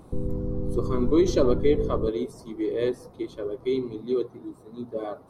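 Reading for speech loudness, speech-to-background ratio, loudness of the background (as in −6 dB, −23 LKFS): −27.0 LKFS, 4.5 dB, −31.5 LKFS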